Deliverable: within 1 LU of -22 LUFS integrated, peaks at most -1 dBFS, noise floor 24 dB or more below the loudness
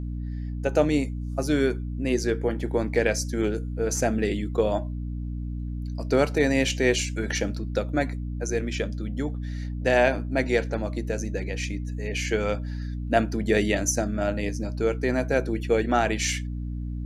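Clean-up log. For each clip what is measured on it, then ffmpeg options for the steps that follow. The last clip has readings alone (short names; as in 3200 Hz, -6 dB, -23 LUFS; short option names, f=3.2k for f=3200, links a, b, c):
hum 60 Hz; harmonics up to 300 Hz; hum level -29 dBFS; loudness -26.5 LUFS; peak -7.5 dBFS; loudness target -22.0 LUFS
-> -af "bandreject=f=60:t=h:w=6,bandreject=f=120:t=h:w=6,bandreject=f=180:t=h:w=6,bandreject=f=240:t=h:w=6,bandreject=f=300:t=h:w=6"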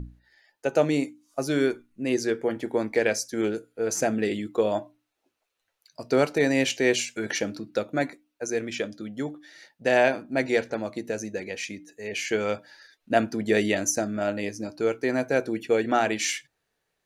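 hum none; loudness -26.5 LUFS; peak -8.5 dBFS; loudness target -22.0 LUFS
-> -af "volume=4.5dB"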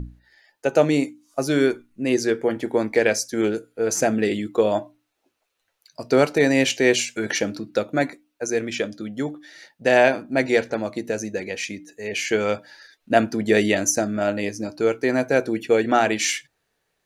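loudness -22.0 LUFS; peak -4.0 dBFS; noise floor -75 dBFS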